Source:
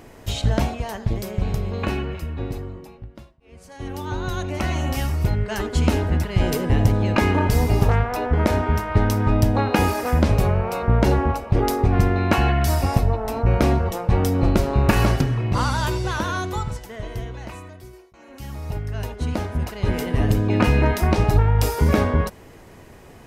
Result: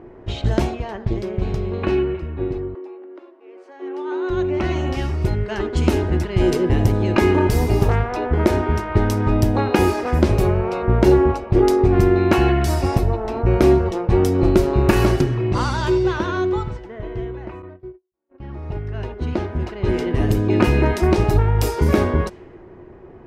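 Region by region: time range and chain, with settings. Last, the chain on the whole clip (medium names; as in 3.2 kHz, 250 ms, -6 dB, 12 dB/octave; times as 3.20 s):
2.75–4.30 s: steep high-pass 260 Hz 96 dB/octave + upward compressor, threshold -36 dBFS + tilt EQ +2 dB/octave
17.62–18.54 s: Savitzky-Golay filter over 15 samples + gate -42 dBFS, range -38 dB
whole clip: level-controlled noise filter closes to 1.3 kHz, open at -13.5 dBFS; peaking EQ 360 Hz +14.5 dB 0.22 oct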